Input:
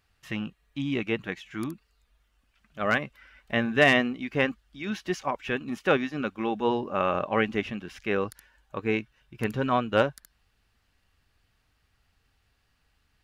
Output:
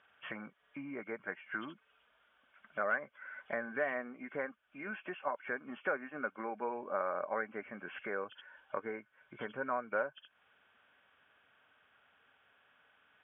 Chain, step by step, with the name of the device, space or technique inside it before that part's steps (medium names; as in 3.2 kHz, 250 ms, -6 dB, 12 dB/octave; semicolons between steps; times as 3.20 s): hearing aid with frequency lowering (knee-point frequency compression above 2.1 kHz 4:1; compression 4:1, threshold -42 dBFS, peak gain reduction 22 dB; cabinet simulation 310–5400 Hz, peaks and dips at 330 Hz -4 dB, 590 Hz +6 dB, 1 kHz +3 dB, 1.5 kHz +10 dB, 2.3 kHz -9 dB, 4 kHz -7 dB); trim +3.5 dB